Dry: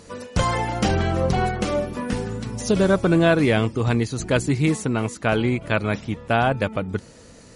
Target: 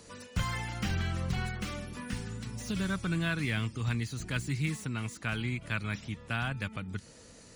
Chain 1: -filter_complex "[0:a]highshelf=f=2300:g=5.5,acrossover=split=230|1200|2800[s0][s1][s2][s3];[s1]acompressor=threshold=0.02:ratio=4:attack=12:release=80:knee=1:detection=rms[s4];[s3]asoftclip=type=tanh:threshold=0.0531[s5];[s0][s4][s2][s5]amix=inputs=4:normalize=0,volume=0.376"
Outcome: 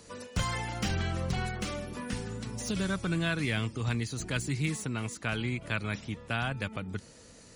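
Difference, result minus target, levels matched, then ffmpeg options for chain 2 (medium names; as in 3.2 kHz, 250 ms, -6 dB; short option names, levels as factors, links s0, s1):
compression: peak gain reduction -8.5 dB; saturation: distortion -8 dB
-filter_complex "[0:a]highshelf=f=2300:g=5.5,acrossover=split=230|1200|2800[s0][s1][s2][s3];[s1]acompressor=threshold=0.00562:ratio=4:attack=12:release=80:knee=1:detection=rms[s4];[s3]asoftclip=type=tanh:threshold=0.0168[s5];[s0][s4][s2][s5]amix=inputs=4:normalize=0,volume=0.376"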